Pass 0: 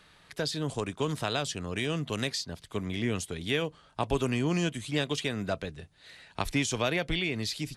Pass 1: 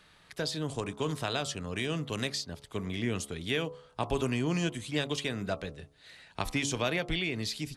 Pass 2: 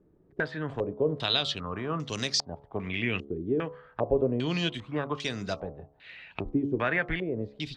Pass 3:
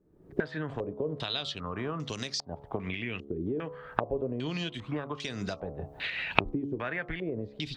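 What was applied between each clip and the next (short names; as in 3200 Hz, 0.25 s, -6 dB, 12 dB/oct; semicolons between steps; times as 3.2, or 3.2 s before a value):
de-hum 70.77 Hz, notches 19; gain -1.5 dB
stepped low-pass 2.5 Hz 360–5600 Hz
recorder AGC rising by 55 dB/s; gain -7 dB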